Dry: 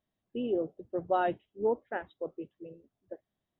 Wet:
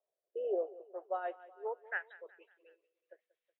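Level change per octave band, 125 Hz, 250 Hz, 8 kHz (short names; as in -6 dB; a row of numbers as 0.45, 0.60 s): under -40 dB, -16.0 dB, n/a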